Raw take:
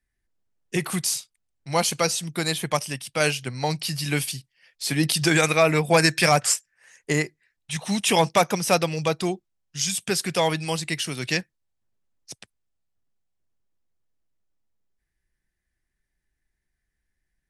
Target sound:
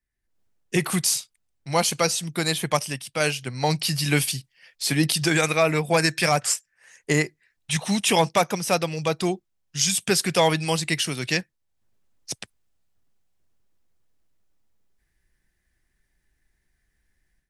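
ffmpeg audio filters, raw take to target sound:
-af "dynaudnorm=f=220:g=3:m=5.01,volume=0.501"

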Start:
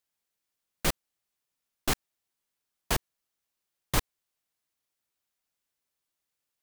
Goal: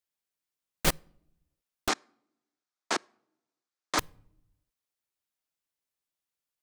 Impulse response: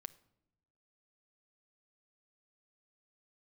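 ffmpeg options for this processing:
-filter_complex "[0:a]asplit=2[s0][s1];[1:a]atrim=start_sample=2205[s2];[s1][s2]afir=irnorm=-1:irlink=0,volume=2[s3];[s0][s3]amix=inputs=2:normalize=0,aeval=exprs='0.596*(cos(1*acos(clip(val(0)/0.596,-1,1)))-cos(1*PI/2))+0.0531*(cos(7*acos(clip(val(0)/0.596,-1,1)))-cos(7*PI/2))':c=same,asettb=1/sr,asplit=3[s4][s5][s6];[s4]atrim=end=1.884[s7];[s5]atrim=start=1.88:end=3.99,asetpts=PTS-STARTPTS,afade=t=in:d=0.004:c=qsin,afade=t=out:st=2.106:d=0.004:c=qsin,highpass=f=270:w=0.5412,highpass=f=270:w=1.3066,equalizer=f=460:t=q:w=4:g=-5,equalizer=f=1300:t=q:w=4:g=4,equalizer=f=2900:t=q:w=4:g=-6,lowpass=f=7300:w=0.5412,lowpass=f=7300:w=1.3066[s8];[s6]atrim=start=3.986[s9];[s7][s8]acrossfade=d=0.004:c1=hsin:c2=qsin[s10];[s10][s9]acrossfade=d=0.004:c1=qsin:c2=hsin,volume=0.668"

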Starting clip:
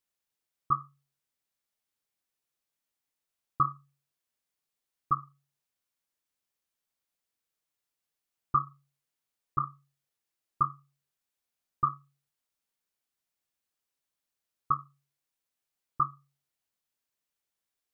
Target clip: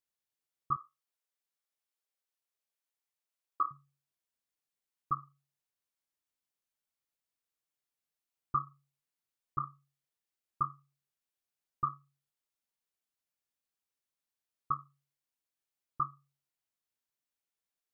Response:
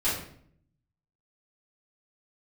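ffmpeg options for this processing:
-filter_complex "[0:a]asettb=1/sr,asplit=3[s0][s1][s2];[s0]atrim=end=0.764[s3];[s1]atrim=start=0.76:end=3.71,asetpts=PTS-STARTPTS,afade=t=in:d=0.004:c=qsin,afade=t=out:st=2.946:d=0.004:c=qsin,highpass=f=370:w=0.5412,highpass=f=370:w=1.3066[s4];[s2]atrim=start=3.706[s5];[s3][s4]acrossfade=d=0.004:c1=hsin:c2=qsin[s6];[s6][s5]acrossfade=d=0.004:c1=qsin:c2=hsin,volume=0.531"

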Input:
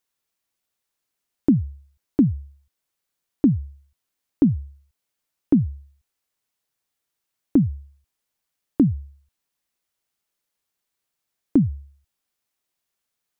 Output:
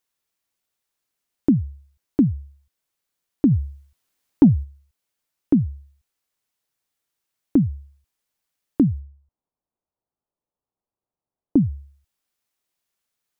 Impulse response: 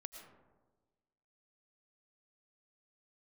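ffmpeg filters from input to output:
-filter_complex "[0:a]asplit=3[s0][s1][s2];[s0]afade=t=out:st=3.5:d=0.02[s3];[s1]acontrast=35,afade=t=in:st=3.5:d=0.02,afade=t=out:st=4.63:d=0.02[s4];[s2]afade=t=in:st=4.63:d=0.02[s5];[s3][s4][s5]amix=inputs=3:normalize=0,asplit=3[s6][s7][s8];[s6]afade=t=out:st=8.99:d=0.02[s9];[s7]lowpass=f=1000:w=0.5412,lowpass=f=1000:w=1.3066,afade=t=in:st=8.99:d=0.02,afade=t=out:st=11.61:d=0.02[s10];[s8]afade=t=in:st=11.61:d=0.02[s11];[s9][s10][s11]amix=inputs=3:normalize=0"

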